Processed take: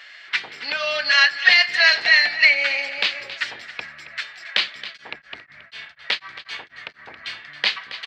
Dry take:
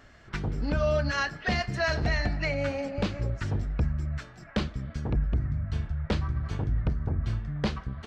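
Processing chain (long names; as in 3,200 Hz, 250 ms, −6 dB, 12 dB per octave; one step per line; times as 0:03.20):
high-pass filter 950 Hz 12 dB per octave
flat-topped bell 2,900 Hz +13 dB
single-tap delay 273 ms −14 dB
0:04.86–0:06.99: tremolo along a rectified sine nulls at 4.1 Hz
level +6.5 dB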